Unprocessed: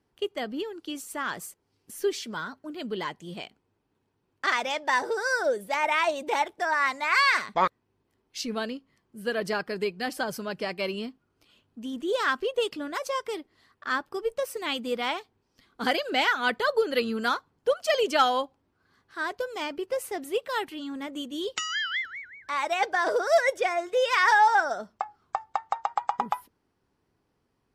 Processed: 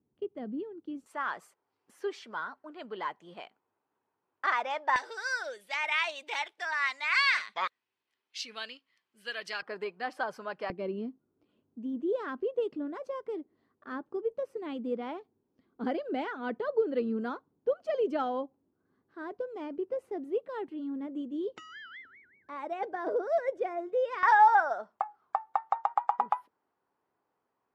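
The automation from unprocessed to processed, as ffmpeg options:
ffmpeg -i in.wav -af "asetnsamples=nb_out_samples=441:pad=0,asendcmd='1.06 bandpass f 1000;4.96 bandpass f 2900;9.62 bandpass f 1000;10.7 bandpass f 290;24.23 bandpass f 920',bandpass=frequency=200:width_type=q:width=1.1:csg=0" out.wav

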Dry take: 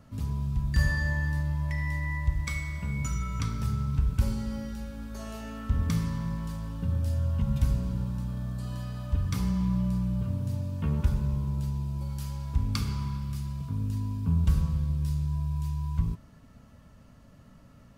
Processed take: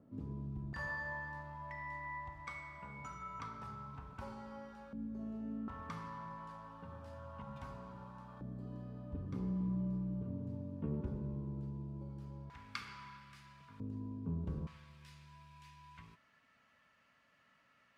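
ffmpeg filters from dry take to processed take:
ffmpeg -i in.wav -af "asetnsamples=nb_out_samples=441:pad=0,asendcmd='0.73 bandpass f 930;4.93 bandpass f 240;5.68 bandpass f 1000;8.41 bandpass f 350;12.5 bandpass f 1800;13.8 bandpass f 390;14.67 bandpass f 2100',bandpass=frequency=340:width_type=q:width=1.8:csg=0" out.wav

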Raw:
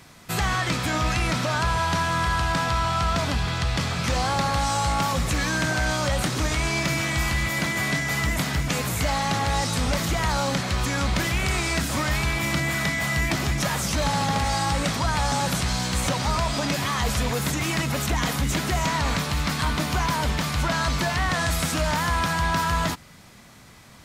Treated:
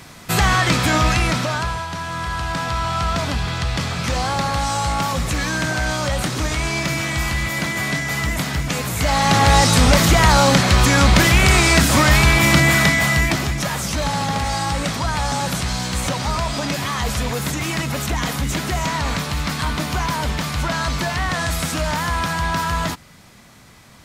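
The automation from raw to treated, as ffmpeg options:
ffmpeg -i in.wav -af "volume=24dB,afade=type=out:start_time=0.95:duration=0.93:silence=0.223872,afade=type=in:start_time=1.88:duration=1.17:silence=0.421697,afade=type=in:start_time=8.94:duration=0.54:silence=0.375837,afade=type=out:start_time=12.7:duration=0.82:silence=0.354813" out.wav

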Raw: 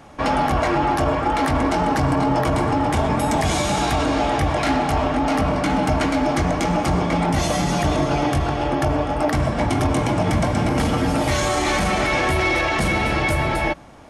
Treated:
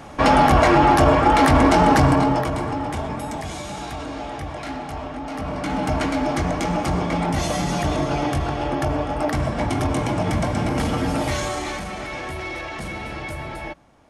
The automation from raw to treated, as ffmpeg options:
ffmpeg -i in.wav -af "volume=13.5dB,afade=type=out:start_time=1.96:duration=0.53:silence=0.334965,afade=type=out:start_time=2.49:duration=1.02:silence=0.473151,afade=type=in:start_time=5.31:duration=0.64:silence=0.375837,afade=type=out:start_time=11.21:duration=0.64:silence=0.375837" out.wav

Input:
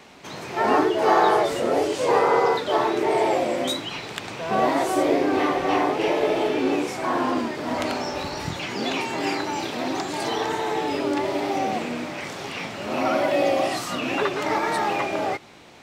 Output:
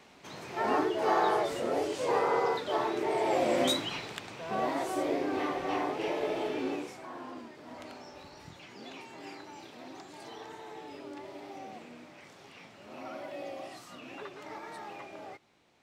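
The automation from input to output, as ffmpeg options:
ffmpeg -i in.wav -af "volume=-1.5dB,afade=type=in:start_time=3.23:duration=0.39:silence=0.421697,afade=type=out:start_time=3.62:duration=0.64:silence=0.354813,afade=type=out:start_time=6.62:duration=0.46:silence=0.334965" out.wav

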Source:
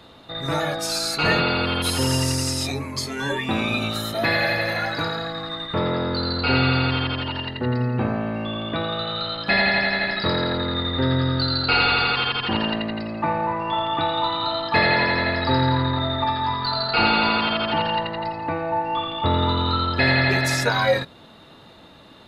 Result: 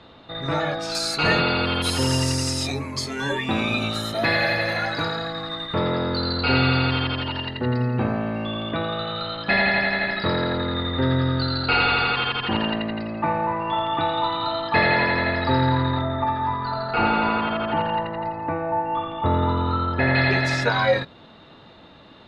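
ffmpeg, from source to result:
ffmpeg -i in.wav -af "asetnsamples=nb_out_samples=441:pad=0,asendcmd='0.95 lowpass f 9500;8.71 lowpass f 3500;16.01 lowpass f 1800;20.15 lowpass f 4300',lowpass=4000" out.wav

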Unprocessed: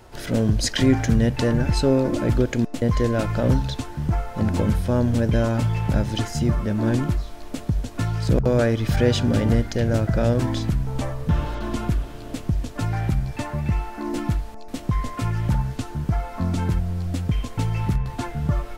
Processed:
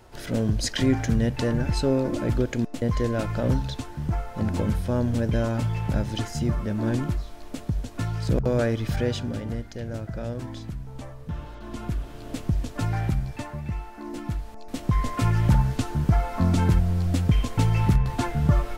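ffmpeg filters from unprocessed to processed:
ffmpeg -i in.wav -af "volume=17dB,afade=type=out:start_time=8.76:duration=0.65:silence=0.398107,afade=type=in:start_time=11.6:duration=0.79:silence=0.298538,afade=type=out:start_time=12.97:duration=0.64:silence=0.473151,afade=type=in:start_time=14.23:duration=1.05:silence=0.298538" out.wav

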